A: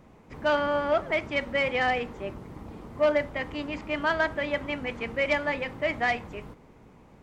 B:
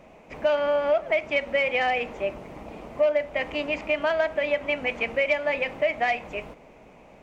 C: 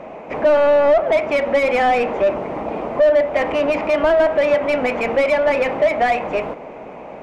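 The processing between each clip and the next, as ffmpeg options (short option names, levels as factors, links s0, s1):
-af "equalizer=f=100:t=o:w=0.67:g=-9,equalizer=f=630:t=o:w=0.67:g=12,equalizer=f=2500:t=o:w=0.67:g=11,equalizer=f=6300:t=o:w=0.67:g=4,acompressor=threshold=0.0794:ratio=3"
-filter_complex "[0:a]acrossover=split=4700[s0][s1];[s1]acompressor=threshold=0.00141:ratio=4:attack=1:release=60[s2];[s0][s2]amix=inputs=2:normalize=0,asplit=2[s3][s4];[s4]highpass=f=720:p=1,volume=12.6,asoftclip=type=tanh:threshold=0.266[s5];[s3][s5]amix=inputs=2:normalize=0,lowpass=f=1400:p=1,volume=0.501,tiltshelf=f=1400:g=4.5,volume=1.33"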